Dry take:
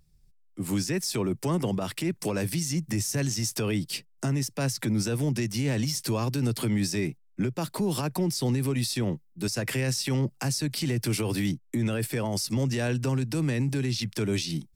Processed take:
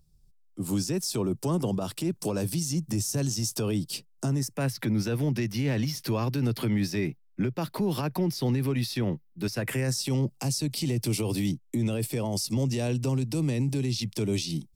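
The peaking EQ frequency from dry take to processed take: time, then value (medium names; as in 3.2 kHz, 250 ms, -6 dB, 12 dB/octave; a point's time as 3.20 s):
peaking EQ -12.5 dB
4.32 s 2 kHz
4.76 s 8 kHz
9.52 s 8 kHz
10.11 s 1.6 kHz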